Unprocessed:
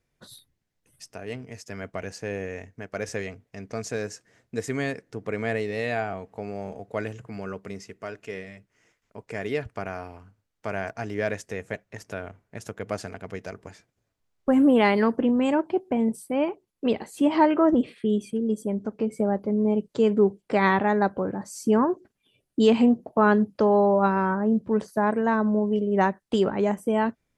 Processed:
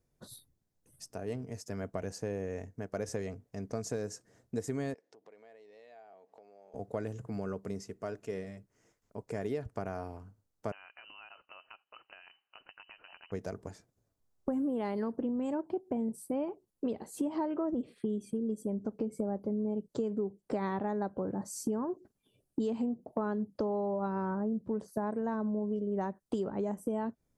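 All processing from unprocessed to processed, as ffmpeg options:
ffmpeg -i in.wav -filter_complex "[0:a]asettb=1/sr,asplit=3[link_01][link_02][link_03];[link_01]atrim=end=4.944[link_04];[link_02]atrim=start=4.94:end=6.74,asetpts=PTS-STARTPTS,afade=type=in:duration=0.004:curve=qsin,afade=type=out:start_time=1.796:duration=0.004:curve=qsin,acompressor=threshold=-44dB:ratio=6:attack=3.2:release=140:knee=1:detection=peak,highpass=630,lowpass=4800,equalizer=frequency=1300:width_type=o:width=0.81:gain=-7.5[link_05];[link_03]atrim=start=6.736[link_06];[link_04][link_05]acrossfade=duration=0.004:curve1=hsin:curve2=qsin[link_07];[link_07][link_06]acrossfade=duration=0.004:curve1=qsin:curve2=hsin,asettb=1/sr,asplit=3[link_08][link_09][link_10];[link_08]atrim=end=10.724[link_11];[link_09]atrim=start=10.72:end=13.32,asetpts=PTS-STARTPTS,afade=type=in:duration=0.004:curve=qsin,afade=type=out:start_time=2.596:duration=0.004:curve=qsin,lowshelf=frequency=170:gain=-9,acompressor=threshold=-37dB:ratio=12:attack=3.2:release=140:knee=1:detection=peak,lowpass=frequency=2600:width_type=q:width=0.5098,lowpass=frequency=2600:width_type=q:width=0.6013,lowpass=frequency=2600:width_type=q:width=0.9,lowpass=frequency=2600:width_type=q:width=2.563,afreqshift=-3100[link_12];[link_10]atrim=start=13.316[link_13];[link_11][link_12]acrossfade=duration=0.004:curve1=hsin:curve2=qsin[link_14];[link_14][link_13]acrossfade=duration=0.004:curve1=qsin:curve2=hsin,equalizer=frequency=2400:width=0.76:gain=-12.5,acompressor=threshold=-31dB:ratio=6" out.wav

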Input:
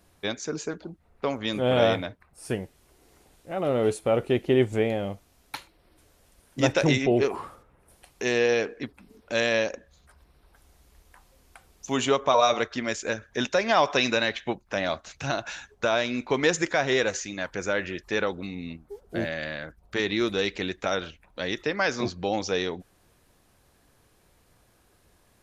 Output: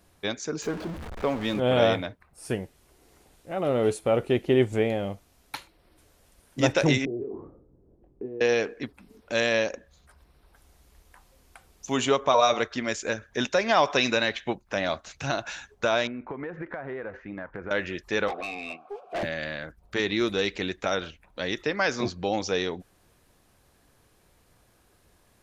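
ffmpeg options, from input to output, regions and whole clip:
ffmpeg -i in.wav -filter_complex "[0:a]asettb=1/sr,asplit=3[link_01][link_02][link_03];[link_01]atrim=end=0.624[link_04];[link_02]atrim=start=0.62:end=1.6,asetpts=PTS-STARTPTS,afade=type=in:duration=0.004:curve=qsin,afade=type=out:start_time=0.976:duration=0.004:curve=qsin,aeval=exprs='val(0)+0.5*0.0266*sgn(val(0))':channel_layout=same,lowpass=frequency=2600:poles=1[link_05];[link_03]atrim=start=1.596[link_06];[link_04][link_05]acrossfade=duration=0.004:curve1=hsin:curve2=qsin[link_07];[link_07][link_06]acrossfade=duration=0.004:curve1=qsin:curve2=hsin,asettb=1/sr,asplit=3[link_08][link_09][link_10];[link_08]atrim=end=7.054[link_11];[link_09]atrim=start=7.05:end=8.41,asetpts=PTS-STARTPTS,afade=type=in:duration=0.004:curve=qsin,afade=type=out:start_time=1.356:duration=0.004:curve=qsin,acompressor=threshold=-32dB:ratio=16:attack=3.2:release=140:knee=1:detection=peak,lowpass=frequency=350:width_type=q:width=2.1,asplit=2[link_12][link_13];[link_13]adelay=23,volume=-8dB[link_14];[link_12][link_14]amix=inputs=2:normalize=0,atrim=end_sample=59976[link_15];[link_10]atrim=start=8.406[link_16];[link_11][link_15]acrossfade=duration=0.004:curve1=hsin:curve2=qsin[link_17];[link_17][link_16]acrossfade=duration=0.004:curve1=qsin:curve2=hsin,asettb=1/sr,asplit=3[link_18][link_19][link_20];[link_18]atrim=end=16.074[link_21];[link_19]atrim=start=16.07:end=17.71,asetpts=PTS-STARTPTS,afade=type=in:duration=0.004:curve=qsin,afade=type=out:start_time=1.636:duration=0.004:curve=qsin,lowpass=frequency=1800:width=0.5412,lowpass=frequency=1800:width=1.3066,acompressor=threshold=-31dB:ratio=10:attack=3.2:release=140:knee=1:detection=peak[link_22];[link_20]atrim=start=17.706[link_23];[link_21][link_22]acrossfade=duration=0.004:curve1=hsin:curve2=qsin[link_24];[link_24][link_23]acrossfade=duration=0.004:curve1=qsin:curve2=hsin,asettb=1/sr,asplit=3[link_25][link_26][link_27];[link_25]atrim=end=18.284[link_28];[link_26]atrim=start=18.28:end=19.23,asetpts=PTS-STARTPTS,afade=type=in:duration=0.004:curve=qsin,afade=type=out:start_time=0.946:duration=0.004:curve=qsin,asplit=3[link_29][link_30][link_31];[link_29]bandpass=frequency=730:width_type=q:width=8,volume=0dB[link_32];[link_30]bandpass=frequency=1090:width_type=q:width=8,volume=-6dB[link_33];[link_31]bandpass=frequency=2440:width_type=q:width=8,volume=-9dB[link_34];[link_32][link_33][link_34]amix=inputs=3:normalize=0,asplit=2[link_35][link_36];[link_36]highpass=frequency=720:poles=1,volume=33dB,asoftclip=type=tanh:threshold=-22dB[link_37];[link_35][link_37]amix=inputs=2:normalize=0,lowpass=frequency=5100:poles=1,volume=-6dB[link_38];[link_27]atrim=start=19.226[link_39];[link_28][link_38]acrossfade=duration=0.004:curve1=hsin:curve2=qsin[link_40];[link_40][link_39]acrossfade=duration=0.004:curve1=qsin:curve2=hsin" out.wav

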